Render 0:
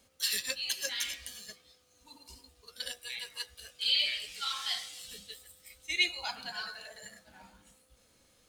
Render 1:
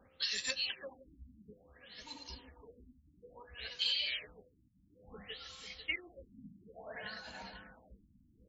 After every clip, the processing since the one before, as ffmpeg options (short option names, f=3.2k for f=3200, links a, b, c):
-filter_complex "[0:a]acompressor=threshold=-36dB:ratio=12,asplit=2[a][b];[b]aecho=0:1:495|990|1485|1980:0.266|0.101|0.0384|0.0146[c];[a][c]amix=inputs=2:normalize=0,afftfilt=real='re*lt(b*sr/1024,290*pow(7700/290,0.5+0.5*sin(2*PI*0.58*pts/sr)))':imag='im*lt(b*sr/1024,290*pow(7700/290,0.5+0.5*sin(2*PI*0.58*pts/sr)))':win_size=1024:overlap=0.75,volume=5dB"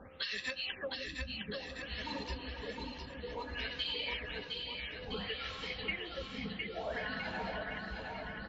-af "lowpass=2.6k,acompressor=threshold=-48dB:ratio=6,aecho=1:1:710|1314|1826|2263|2633:0.631|0.398|0.251|0.158|0.1,volume=12dB"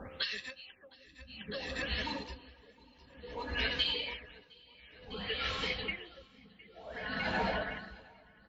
-af "aeval=exprs='val(0)*pow(10,-25*(0.5-0.5*cos(2*PI*0.54*n/s))/20)':c=same,volume=7dB"